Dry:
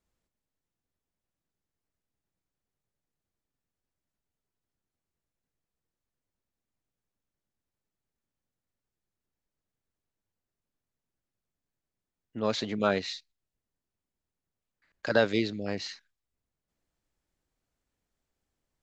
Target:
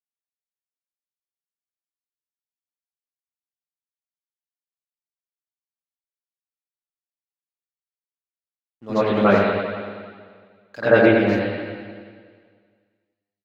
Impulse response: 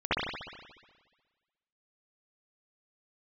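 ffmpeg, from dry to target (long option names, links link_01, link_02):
-filter_complex "[0:a]atempo=1.4,aeval=exprs='sgn(val(0))*max(abs(val(0))-0.00266,0)':channel_layout=same[link_01];[1:a]atrim=start_sample=2205,asetrate=33957,aresample=44100[link_02];[link_01][link_02]afir=irnorm=-1:irlink=0,volume=-2.5dB"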